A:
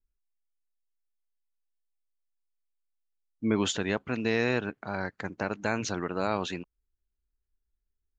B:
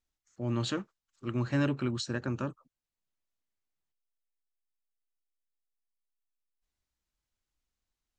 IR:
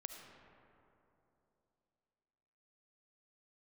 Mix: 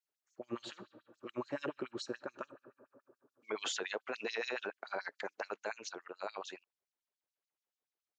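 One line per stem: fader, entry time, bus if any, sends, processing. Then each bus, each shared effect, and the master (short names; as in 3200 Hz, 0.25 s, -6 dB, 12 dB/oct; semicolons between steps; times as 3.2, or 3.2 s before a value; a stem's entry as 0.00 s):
5.32 s -3 dB -> 5.77 s -13.5 dB, 0.00 s, no send, dry
-7.5 dB, 0.00 s, send -7 dB, tilt -3 dB/oct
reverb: on, RT60 3.1 s, pre-delay 30 ms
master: LFO high-pass sine 7 Hz 410–5800 Hz; limiter -27.5 dBFS, peak gain reduction 11 dB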